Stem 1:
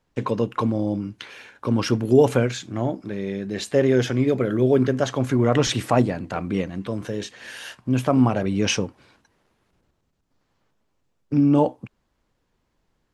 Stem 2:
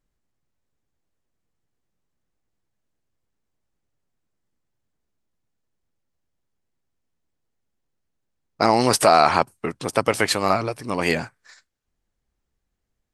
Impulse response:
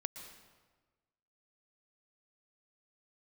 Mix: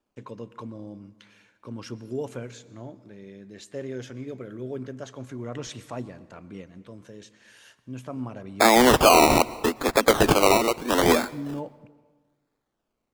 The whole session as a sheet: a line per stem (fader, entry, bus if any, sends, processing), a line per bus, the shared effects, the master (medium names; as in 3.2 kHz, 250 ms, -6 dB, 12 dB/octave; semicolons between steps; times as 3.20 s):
-19.0 dB, 0.00 s, send -6 dB, peaking EQ 7.1 kHz +4.5 dB 0.68 oct; band-stop 770 Hz, Q 13
+2.5 dB, 0.00 s, send -12.5 dB, steep high-pass 210 Hz 96 dB/octave; decimation with a swept rate 21×, swing 60% 0.78 Hz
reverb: on, RT60 1.4 s, pre-delay 109 ms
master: peak limiter -7 dBFS, peak gain reduction 7 dB